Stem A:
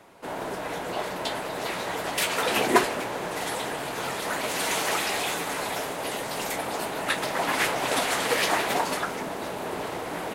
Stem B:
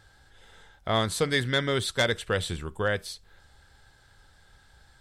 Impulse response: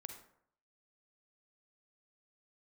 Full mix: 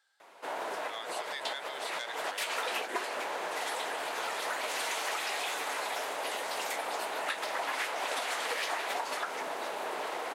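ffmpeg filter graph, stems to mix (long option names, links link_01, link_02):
-filter_complex "[0:a]highshelf=frequency=10000:gain=-8.5,adelay=200,volume=-0.5dB[link_01];[1:a]highpass=frequency=1100:poles=1,volume=-12dB,asplit=2[link_02][link_03];[link_03]apad=whole_len=464963[link_04];[link_01][link_04]sidechaincompress=threshold=-44dB:ratio=8:attack=7.2:release=120[link_05];[link_05][link_02]amix=inputs=2:normalize=0,highpass=550,acompressor=threshold=-31dB:ratio=5"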